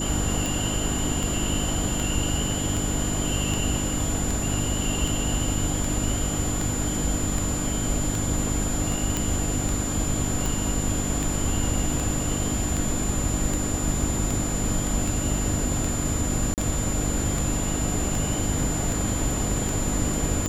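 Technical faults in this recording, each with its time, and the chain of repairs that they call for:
hum 50 Hz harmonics 6 -30 dBFS
tick 78 rpm
whine 7.1 kHz -30 dBFS
9.17 s: pop
16.54–16.58 s: dropout 38 ms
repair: de-click; band-stop 7.1 kHz, Q 30; de-hum 50 Hz, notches 6; interpolate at 16.54 s, 38 ms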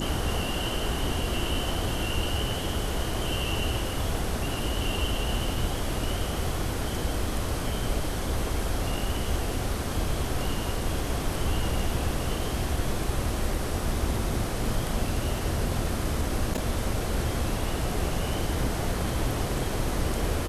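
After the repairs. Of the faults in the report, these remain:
nothing left

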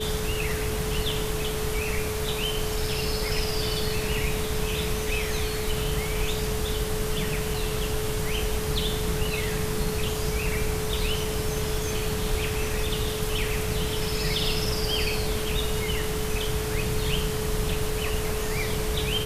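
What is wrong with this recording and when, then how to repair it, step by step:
whine 430 Hz -31 dBFS
7.54 s: dropout 2.9 ms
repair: band-stop 430 Hz, Q 30; interpolate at 7.54 s, 2.9 ms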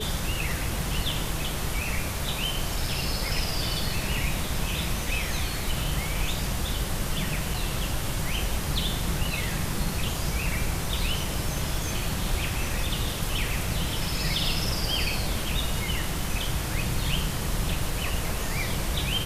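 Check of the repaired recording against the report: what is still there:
nothing left

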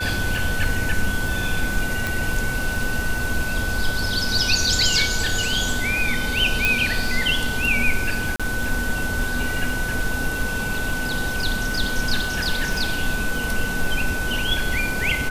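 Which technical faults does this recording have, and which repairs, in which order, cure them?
crackle 33 per s -27 dBFS
whine 1.5 kHz -26 dBFS
2.07 s: pop
6.65 s: pop
8.36–8.40 s: dropout 36 ms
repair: de-click; band-stop 1.5 kHz, Q 30; interpolate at 8.36 s, 36 ms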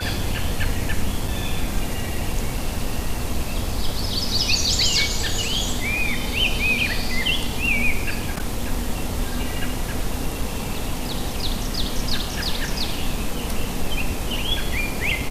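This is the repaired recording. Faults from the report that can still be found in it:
nothing left

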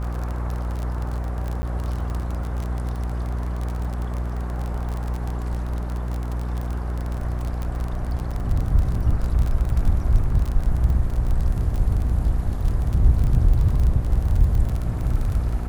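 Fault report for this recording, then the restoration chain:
buzz 60 Hz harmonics 19 -26 dBFS
crackle 31 per s -25 dBFS
1.62–1.63 s: dropout 10 ms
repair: de-click; de-hum 60 Hz, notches 19; interpolate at 1.62 s, 10 ms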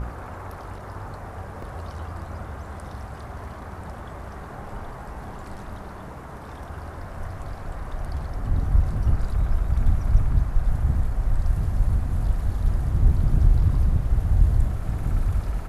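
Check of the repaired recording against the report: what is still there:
nothing left

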